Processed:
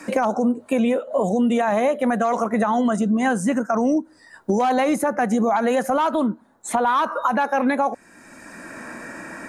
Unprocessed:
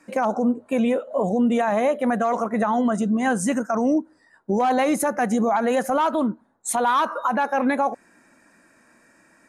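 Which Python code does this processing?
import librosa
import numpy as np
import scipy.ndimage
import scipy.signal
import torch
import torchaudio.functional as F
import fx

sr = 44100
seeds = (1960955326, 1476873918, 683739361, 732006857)

y = fx.band_squash(x, sr, depth_pct=70)
y = y * 10.0 ** (1.0 / 20.0)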